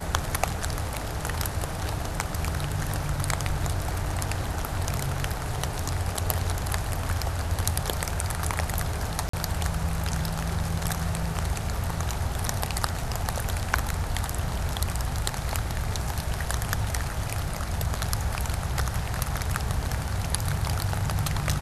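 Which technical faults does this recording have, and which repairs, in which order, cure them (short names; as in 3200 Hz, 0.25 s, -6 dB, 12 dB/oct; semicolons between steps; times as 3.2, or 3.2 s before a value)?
9.29–9.33 gap 44 ms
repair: interpolate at 9.29, 44 ms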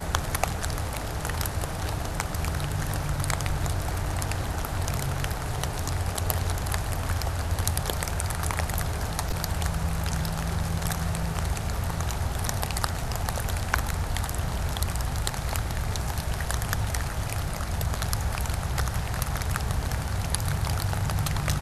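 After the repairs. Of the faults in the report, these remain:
none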